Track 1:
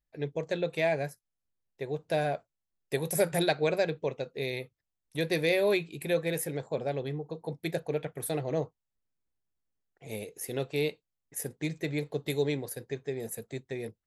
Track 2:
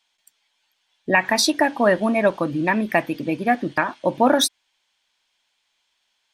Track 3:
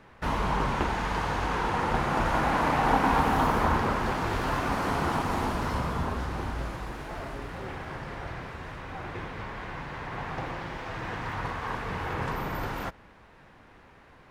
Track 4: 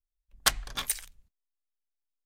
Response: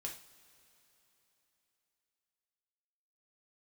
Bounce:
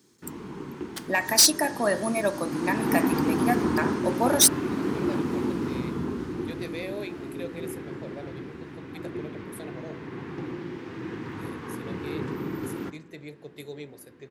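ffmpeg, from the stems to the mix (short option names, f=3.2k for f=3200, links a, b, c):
-filter_complex "[0:a]adelay=1300,volume=-9dB[a];[1:a]aexciter=amount=7.6:drive=4.6:freq=4.4k,volume=5.5dB,asoftclip=hard,volume=-5.5dB,volume=-6.5dB,asplit=2[b][c];[2:a]highpass=110,lowshelf=f=470:t=q:w=3:g=10,volume=-6dB,afade=t=in:st=2.42:d=0.52:silence=0.334965[d];[3:a]acrusher=bits=3:mix=0:aa=0.5,adelay=500,volume=-17.5dB,asplit=2[e][f];[f]volume=-4.5dB[g];[c]apad=whole_len=677742[h];[a][h]sidechaincompress=threshold=-41dB:ratio=8:attack=16:release=411[i];[4:a]atrim=start_sample=2205[j];[g][j]afir=irnorm=-1:irlink=0[k];[i][b][d][e][k]amix=inputs=5:normalize=0,lowshelf=f=85:g=-11.5,bandreject=f=54.2:t=h:w=4,bandreject=f=108.4:t=h:w=4,bandreject=f=162.6:t=h:w=4,bandreject=f=216.8:t=h:w=4,bandreject=f=271:t=h:w=4,bandreject=f=325.2:t=h:w=4,bandreject=f=379.4:t=h:w=4,bandreject=f=433.6:t=h:w=4,bandreject=f=487.8:t=h:w=4,bandreject=f=542:t=h:w=4,bandreject=f=596.2:t=h:w=4,bandreject=f=650.4:t=h:w=4,bandreject=f=704.6:t=h:w=4,bandreject=f=758.8:t=h:w=4,bandreject=f=813:t=h:w=4,bandreject=f=867.2:t=h:w=4,bandreject=f=921.4:t=h:w=4,bandreject=f=975.6:t=h:w=4,bandreject=f=1.0298k:t=h:w=4,bandreject=f=1.084k:t=h:w=4,bandreject=f=1.1382k:t=h:w=4,bandreject=f=1.1924k:t=h:w=4,bandreject=f=1.2466k:t=h:w=4,bandreject=f=1.3008k:t=h:w=4,bandreject=f=1.355k:t=h:w=4,bandreject=f=1.4092k:t=h:w=4,bandreject=f=1.4634k:t=h:w=4,bandreject=f=1.5176k:t=h:w=4,bandreject=f=1.5718k:t=h:w=4,bandreject=f=1.626k:t=h:w=4,bandreject=f=1.6802k:t=h:w=4,bandreject=f=1.7344k:t=h:w=4,bandreject=f=1.7886k:t=h:w=4,bandreject=f=1.8428k:t=h:w=4,bandreject=f=1.897k:t=h:w=4"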